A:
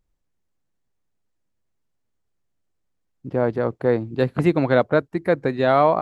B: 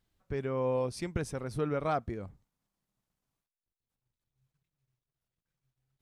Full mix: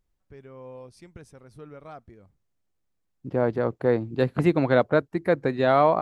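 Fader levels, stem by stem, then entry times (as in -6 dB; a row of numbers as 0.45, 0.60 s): -2.5, -12.0 dB; 0.00, 0.00 s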